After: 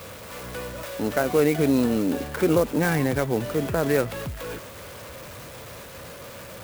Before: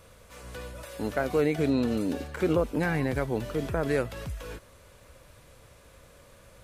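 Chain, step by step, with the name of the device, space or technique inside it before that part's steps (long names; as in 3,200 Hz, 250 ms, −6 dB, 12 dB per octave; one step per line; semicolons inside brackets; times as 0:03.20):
high-pass filter 100 Hz 12 dB per octave
noise gate with hold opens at −45 dBFS
early CD player with a faulty converter (converter with a step at zero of −40.5 dBFS; converter with an unsteady clock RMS 0.037 ms)
level +4.5 dB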